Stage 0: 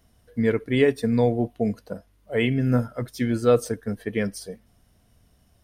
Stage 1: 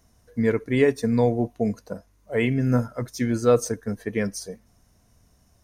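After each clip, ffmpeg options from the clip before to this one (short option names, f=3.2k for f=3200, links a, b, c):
-af "equalizer=f=1k:t=o:w=0.33:g=4,equalizer=f=3.15k:t=o:w=0.33:g=-7,equalizer=f=6.3k:t=o:w=0.33:g=10"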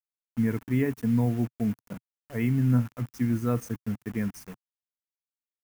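-af "acrusher=bits=5:mix=0:aa=0.000001,equalizer=f=125:t=o:w=1:g=6,equalizer=f=250:t=o:w=1:g=5,equalizer=f=500:t=o:w=1:g=-10,equalizer=f=4k:t=o:w=1:g=-11,equalizer=f=8k:t=o:w=1:g=-6,volume=-6dB"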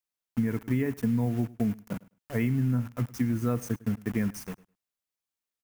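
-af "acompressor=threshold=-28dB:ratio=6,aecho=1:1:104|208:0.0841|0.0126,volume=4.5dB"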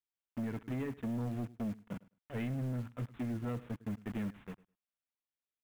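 -af "aresample=8000,asoftclip=type=hard:threshold=-26dB,aresample=44100,acrusher=bits=6:mode=log:mix=0:aa=0.000001,volume=-7.5dB"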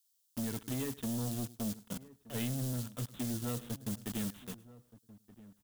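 -filter_complex "[0:a]aexciter=amount=6.1:drive=7.7:freq=3.3k,asplit=2[a][b];[b]adelay=1224,volume=-18dB,highshelf=f=4k:g=-27.6[c];[a][c]amix=inputs=2:normalize=0"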